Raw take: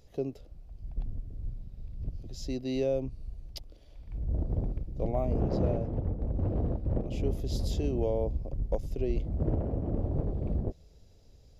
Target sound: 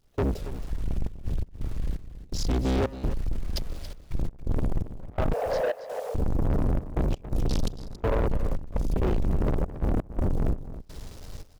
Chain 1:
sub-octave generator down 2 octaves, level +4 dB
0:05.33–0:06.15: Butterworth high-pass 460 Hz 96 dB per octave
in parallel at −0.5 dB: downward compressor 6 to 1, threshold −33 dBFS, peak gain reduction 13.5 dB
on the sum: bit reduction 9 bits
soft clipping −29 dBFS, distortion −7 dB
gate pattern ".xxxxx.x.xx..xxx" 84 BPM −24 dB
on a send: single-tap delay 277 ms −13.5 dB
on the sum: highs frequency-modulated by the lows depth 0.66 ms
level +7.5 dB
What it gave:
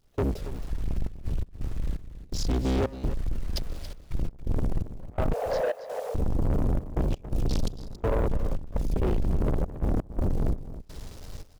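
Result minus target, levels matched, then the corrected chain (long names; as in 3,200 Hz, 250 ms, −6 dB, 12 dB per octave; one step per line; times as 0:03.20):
downward compressor: peak gain reduction +8 dB
sub-octave generator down 2 octaves, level +4 dB
0:05.33–0:06.15: Butterworth high-pass 460 Hz 96 dB per octave
in parallel at −0.5 dB: downward compressor 6 to 1, threshold −23.5 dBFS, peak gain reduction 5.5 dB
on the sum: bit reduction 9 bits
soft clipping −29 dBFS, distortion −6 dB
gate pattern ".xxxxx.x.xx..xxx" 84 BPM −24 dB
on a send: single-tap delay 277 ms −13.5 dB
on the sum: highs frequency-modulated by the lows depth 0.66 ms
level +7.5 dB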